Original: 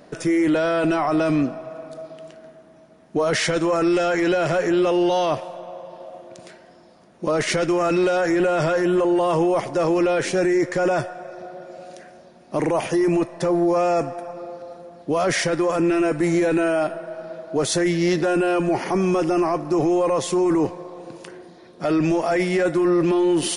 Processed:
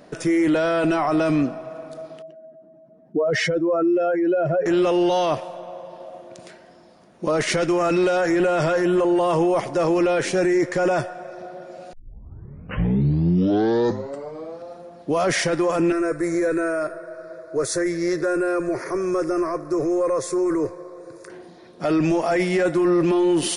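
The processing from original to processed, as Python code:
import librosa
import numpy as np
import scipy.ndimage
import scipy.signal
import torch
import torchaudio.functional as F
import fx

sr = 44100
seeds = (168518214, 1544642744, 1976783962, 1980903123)

y = fx.spec_expand(x, sr, power=1.9, at=(2.22, 4.66))
y = fx.fixed_phaser(y, sr, hz=810.0, stages=6, at=(15.92, 21.3))
y = fx.edit(y, sr, fx.tape_start(start_s=11.93, length_s=2.73), tone=tone)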